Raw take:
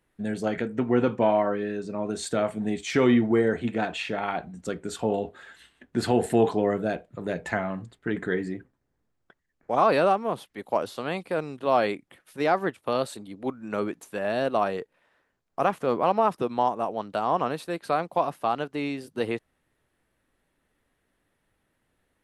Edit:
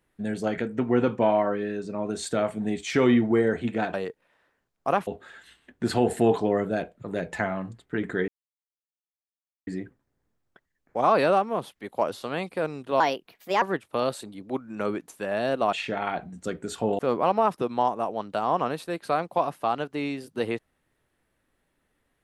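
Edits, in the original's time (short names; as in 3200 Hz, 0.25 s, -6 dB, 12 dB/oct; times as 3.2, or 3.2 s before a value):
3.94–5.2 swap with 14.66–15.79
8.41 insert silence 1.39 s
11.74–12.55 speed 131%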